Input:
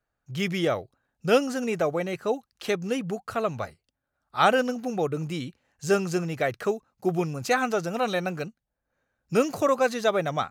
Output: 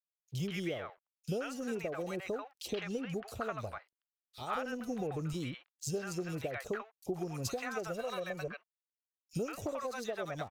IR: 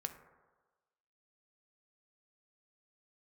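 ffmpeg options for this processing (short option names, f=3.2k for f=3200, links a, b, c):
-filter_complex "[0:a]asettb=1/sr,asplit=3[a][b][c];[a]atrim=end=2.684[d];[b]atrim=start=2.68:end=3.13,asetpts=PTS-STARTPTS,afade=t=in:d=0.004:c=qsin,afade=t=out:st=0.446:d=0.004:c=qsin,lowpass=6.4k[e];[c]atrim=start=3.126[f];[d][e]acrossfade=d=0.004:c1=hsin:c2=qsin[g];[g][f]acrossfade=d=0.004:c1=qsin:c2=hsin,asettb=1/sr,asplit=3[h][i][j];[h]atrim=end=4.514[k];[i]atrim=start=4.51:end=5.29,asetpts=PTS-STARTPTS,afade=t=in:d=0.004:c=qsin,afade=t=out:st=0.776:d=0.004:c=qsin,lowshelf=f=130:g=10[l];[j]atrim=start=5.286[m];[k][l]acrossfade=d=0.004:c1=hsin:c2=qsin[n];[n][m]acrossfade=d=0.004:c1=qsin:c2=hsin,asettb=1/sr,asplit=3[o][p][q];[o]atrim=end=7.834[r];[p]atrim=start=7.83:end=8.44,asetpts=PTS-STARTPTS,afade=t=in:d=0.004:c=qsin,afade=t=out:st=0.606:d=0.004:c=qsin,aecho=1:1:1.8:0.63,atrim=end_sample=26901[s];[q]atrim=start=8.436[t];[r][s]acrossfade=d=0.004:c1=hsin:c2=qsin[u];[u][t]acrossfade=d=0.004:c1=qsin:c2=hsin,asubboost=boost=6:cutoff=66,acompressor=threshold=-33dB:ratio=10,aeval=exprs='sgn(val(0))*max(abs(val(0))-0.00133,0)':c=same,acrossover=split=760|3300[v][w][x];[v]adelay=40[y];[w]adelay=130[z];[y][z][x]amix=inputs=3:normalize=0,volume=1dB"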